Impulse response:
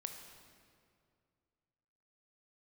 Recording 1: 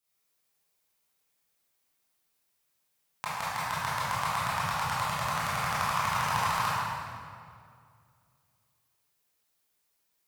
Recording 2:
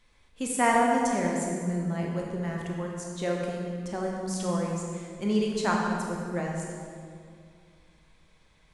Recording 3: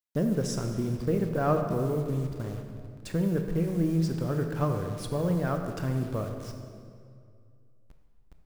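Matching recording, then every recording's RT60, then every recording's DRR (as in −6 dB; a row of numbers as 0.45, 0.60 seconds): 3; 2.3, 2.3, 2.3 seconds; −11.0, −1.5, 4.5 decibels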